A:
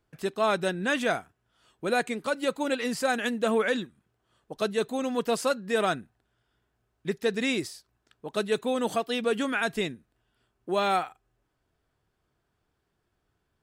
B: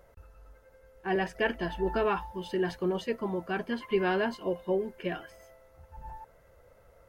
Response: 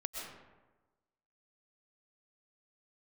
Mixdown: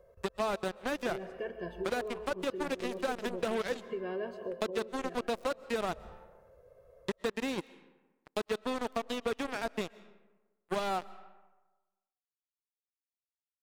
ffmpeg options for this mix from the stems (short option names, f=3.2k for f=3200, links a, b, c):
-filter_complex "[0:a]acrusher=bits=3:mix=0:aa=0.5,volume=-2dB,asplit=2[a][b];[b]volume=-21dB[c];[1:a]equalizer=f=330:w=0.56:g=13,aecho=1:1:1.8:0.87,alimiter=limit=-15.5dB:level=0:latency=1:release=444,volume=-16.5dB,asplit=2[d][e];[e]volume=-4dB[f];[2:a]atrim=start_sample=2205[g];[c][f]amix=inputs=2:normalize=0[h];[h][g]afir=irnorm=-1:irlink=0[i];[a][d][i]amix=inputs=3:normalize=0,acrossover=split=910|5200[j][k][l];[j]acompressor=threshold=-31dB:ratio=4[m];[k]acompressor=threshold=-41dB:ratio=4[n];[l]acompressor=threshold=-55dB:ratio=4[o];[m][n][o]amix=inputs=3:normalize=0"